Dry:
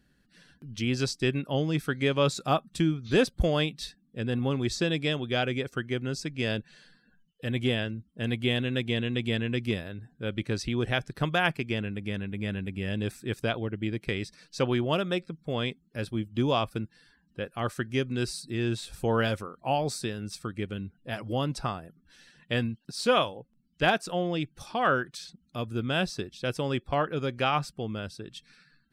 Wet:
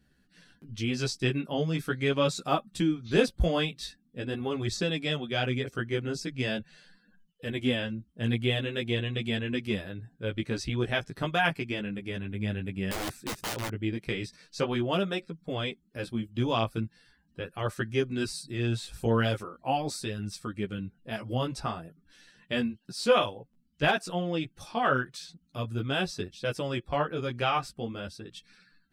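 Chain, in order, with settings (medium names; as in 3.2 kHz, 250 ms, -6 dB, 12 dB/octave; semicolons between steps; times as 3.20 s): 12.91–13.70 s: integer overflow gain 26.5 dB; chorus voices 2, 0.42 Hz, delay 14 ms, depth 4.2 ms; trim +2 dB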